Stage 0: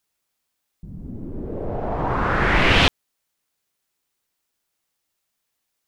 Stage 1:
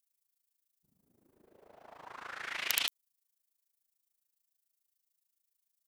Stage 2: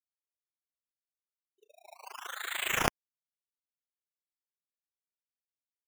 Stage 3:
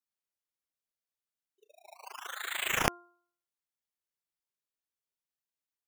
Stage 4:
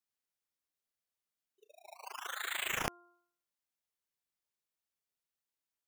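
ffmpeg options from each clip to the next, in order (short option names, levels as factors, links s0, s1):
-af "aeval=exprs='(mod(1.68*val(0)+1,2)-1)/1.68':c=same,aderivative,tremolo=f=27:d=0.857,volume=0.668"
-af "afftfilt=real='re*gte(hypot(re,im),0.00891)':imag='im*gte(hypot(re,im),0.00891)':win_size=1024:overlap=0.75,acrusher=samples=11:mix=1:aa=0.000001:lfo=1:lforange=6.6:lforate=0.69,volume=1.58"
-af "bandreject=f=349.2:t=h:w=4,bandreject=f=698.4:t=h:w=4,bandreject=f=1047.6:t=h:w=4,bandreject=f=1396.8:t=h:w=4"
-af "acompressor=threshold=0.02:ratio=3"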